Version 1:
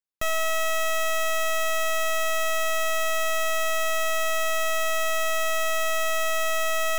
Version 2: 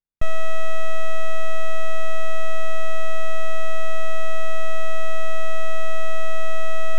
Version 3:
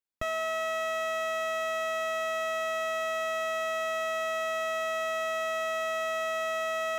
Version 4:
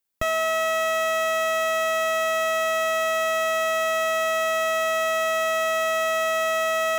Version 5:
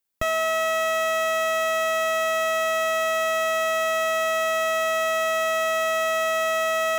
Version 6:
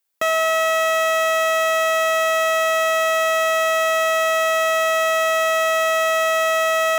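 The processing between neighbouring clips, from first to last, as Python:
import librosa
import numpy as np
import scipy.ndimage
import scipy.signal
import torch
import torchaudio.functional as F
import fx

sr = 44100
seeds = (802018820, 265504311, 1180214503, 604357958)

y1 = fx.riaa(x, sr, side='playback')
y1 = y1 * 10.0 ** (-3.0 / 20.0)
y2 = fx.highpass(y1, sr, hz=260.0, slope=6)
y3 = fx.high_shelf(y2, sr, hz=8800.0, db=9.0)
y3 = y3 * 10.0 ** (7.5 / 20.0)
y4 = y3
y5 = scipy.signal.sosfilt(scipy.signal.butter(2, 370.0, 'highpass', fs=sr, output='sos'), y4)
y5 = y5 * 10.0 ** (5.0 / 20.0)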